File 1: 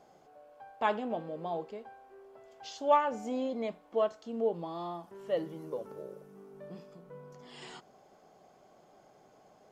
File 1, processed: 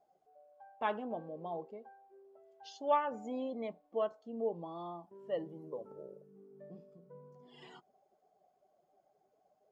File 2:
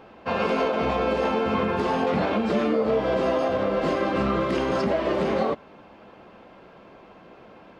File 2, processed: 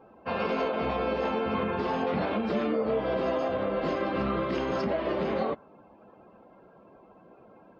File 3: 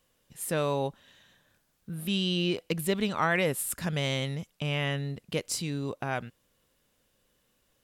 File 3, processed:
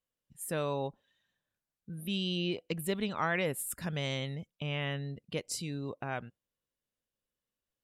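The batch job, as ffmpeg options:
-af "afftdn=nr=16:nf=-49,volume=-5dB"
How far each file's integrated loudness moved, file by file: -5.0, -5.0, -5.0 LU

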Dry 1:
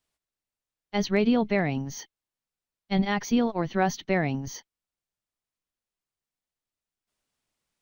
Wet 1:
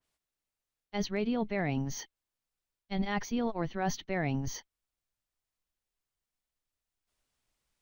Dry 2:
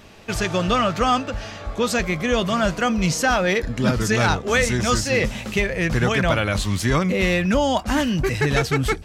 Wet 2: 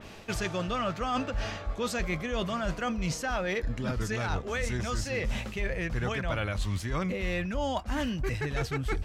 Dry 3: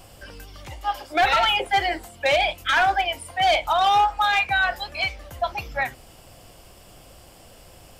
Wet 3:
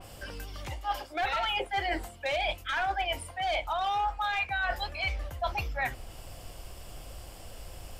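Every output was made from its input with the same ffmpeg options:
-af "asubboost=boost=2.5:cutoff=95,areverse,acompressor=threshold=-27dB:ratio=12,areverse,adynamicequalizer=threshold=0.00355:dfrequency=3500:dqfactor=0.7:tfrequency=3500:tqfactor=0.7:attack=5:release=100:ratio=0.375:range=2:mode=cutabove:tftype=highshelf"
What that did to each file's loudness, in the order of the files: -7.5, -11.0, -9.5 LU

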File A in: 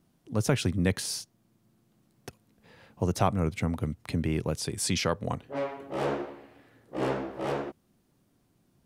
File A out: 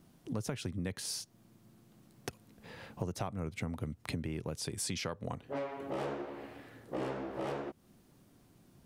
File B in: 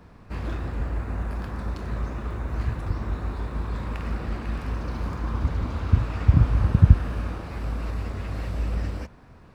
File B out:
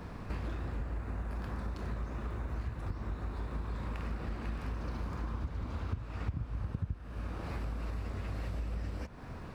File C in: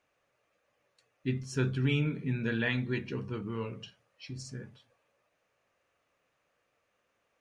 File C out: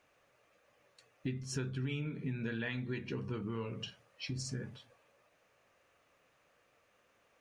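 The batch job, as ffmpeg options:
-af "acompressor=threshold=-41dB:ratio=6,volume=5.5dB"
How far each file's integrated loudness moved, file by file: -9.0, -13.0, -7.0 LU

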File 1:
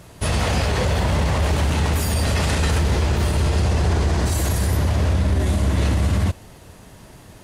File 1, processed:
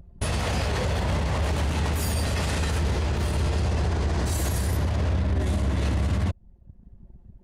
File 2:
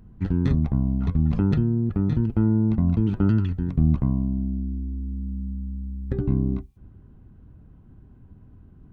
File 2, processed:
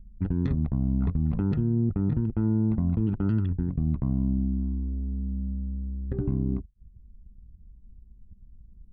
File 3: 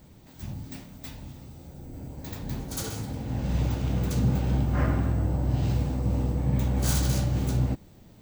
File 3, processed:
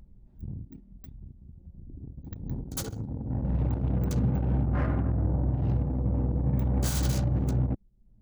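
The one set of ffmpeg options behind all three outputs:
-af "anlmdn=15.8,alimiter=limit=-17dB:level=0:latency=1:release=173,acompressor=mode=upward:threshold=-39dB:ratio=2.5"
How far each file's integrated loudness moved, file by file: -5.5, -3.5, -1.0 LU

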